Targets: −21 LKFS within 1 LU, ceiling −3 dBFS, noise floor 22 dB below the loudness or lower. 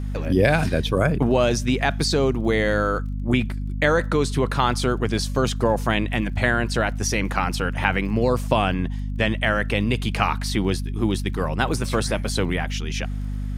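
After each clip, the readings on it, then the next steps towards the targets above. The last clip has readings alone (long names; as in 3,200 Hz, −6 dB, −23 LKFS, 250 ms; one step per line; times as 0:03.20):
crackle rate 27 per second; mains hum 50 Hz; hum harmonics up to 250 Hz; level of the hum −25 dBFS; integrated loudness −22.5 LKFS; sample peak −2.5 dBFS; target loudness −21.0 LKFS
→ click removal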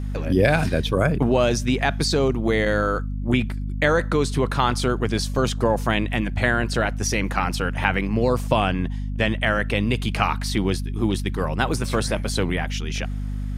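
crackle rate 0.074 per second; mains hum 50 Hz; hum harmonics up to 250 Hz; level of the hum −25 dBFS
→ hum removal 50 Hz, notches 5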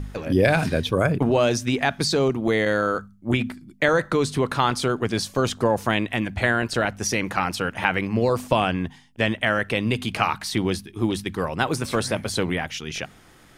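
mains hum none found; integrated loudness −23.5 LKFS; sample peak −2.5 dBFS; target loudness −21.0 LKFS
→ level +2.5 dB
brickwall limiter −3 dBFS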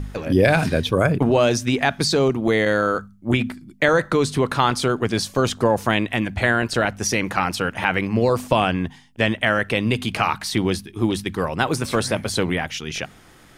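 integrated loudness −21.0 LKFS; sample peak −3.0 dBFS; background noise floor −49 dBFS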